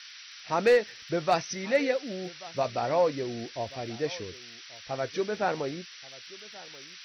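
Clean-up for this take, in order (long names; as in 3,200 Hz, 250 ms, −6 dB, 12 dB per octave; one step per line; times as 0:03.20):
clipped peaks rebuilt −14.5 dBFS
click removal
noise reduction from a noise print 26 dB
echo removal 1,133 ms −20.5 dB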